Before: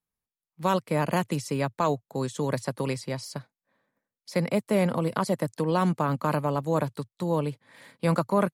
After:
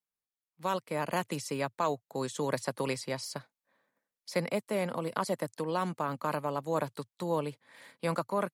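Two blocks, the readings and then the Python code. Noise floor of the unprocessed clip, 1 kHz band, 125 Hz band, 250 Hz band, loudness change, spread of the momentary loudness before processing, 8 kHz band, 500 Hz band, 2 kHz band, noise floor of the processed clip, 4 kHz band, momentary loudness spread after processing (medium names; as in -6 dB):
under -85 dBFS, -4.5 dB, -10.5 dB, -9.0 dB, -6.0 dB, 9 LU, -2.0 dB, -5.0 dB, -3.5 dB, under -85 dBFS, -2.5 dB, 6 LU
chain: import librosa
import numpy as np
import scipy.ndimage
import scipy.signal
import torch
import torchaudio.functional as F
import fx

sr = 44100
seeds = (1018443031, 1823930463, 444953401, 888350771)

y = fx.low_shelf(x, sr, hz=210.0, db=-12.0)
y = fx.rider(y, sr, range_db=3, speed_s=0.5)
y = F.gain(torch.from_numpy(y), -3.0).numpy()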